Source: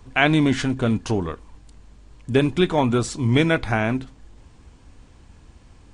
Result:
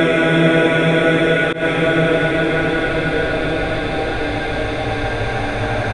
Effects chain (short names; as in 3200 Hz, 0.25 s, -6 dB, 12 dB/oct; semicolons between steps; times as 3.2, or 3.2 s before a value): frequency-shifting echo 0.115 s, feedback 40%, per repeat +130 Hz, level -9.5 dB; Paulstretch 36×, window 0.25 s, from 3.51; auto swell 0.14 s; gain +4 dB